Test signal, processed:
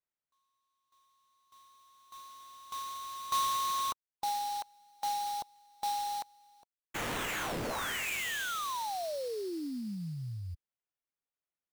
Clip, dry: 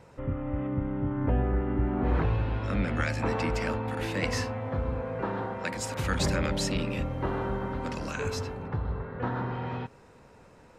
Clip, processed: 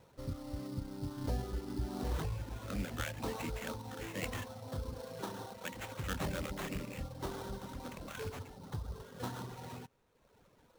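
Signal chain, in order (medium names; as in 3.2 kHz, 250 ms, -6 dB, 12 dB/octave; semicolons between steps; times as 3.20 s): reverb removal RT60 1.1 s; sample-rate reducer 4.9 kHz, jitter 20%; trim -8.5 dB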